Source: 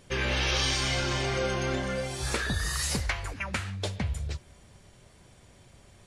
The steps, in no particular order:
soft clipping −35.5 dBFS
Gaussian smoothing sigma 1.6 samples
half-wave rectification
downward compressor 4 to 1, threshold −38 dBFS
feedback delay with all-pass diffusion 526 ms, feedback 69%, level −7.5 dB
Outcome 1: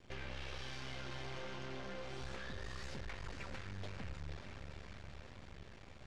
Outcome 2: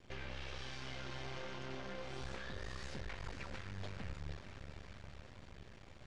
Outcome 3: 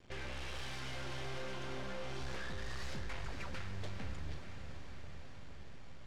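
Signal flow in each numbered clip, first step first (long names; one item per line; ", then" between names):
downward compressor, then feedback delay with all-pass diffusion, then half-wave rectification, then Gaussian smoothing, then soft clipping
downward compressor, then soft clipping, then feedback delay with all-pass diffusion, then half-wave rectification, then Gaussian smoothing
half-wave rectification, then Gaussian smoothing, then soft clipping, then downward compressor, then feedback delay with all-pass diffusion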